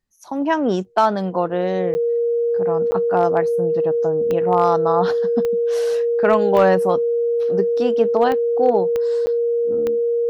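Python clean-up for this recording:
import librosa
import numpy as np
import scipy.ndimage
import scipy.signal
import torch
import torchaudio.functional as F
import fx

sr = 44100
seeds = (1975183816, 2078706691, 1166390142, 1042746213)

y = fx.fix_declip(x, sr, threshold_db=-6.0)
y = fx.fix_declick_ar(y, sr, threshold=10.0)
y = fx.notch(y, sr, hz=470.0, q=30.0)
y = fx.fix_interpolate(y, sr, at_s=(1.94, 2.91, 9.26), length_ms=10.0)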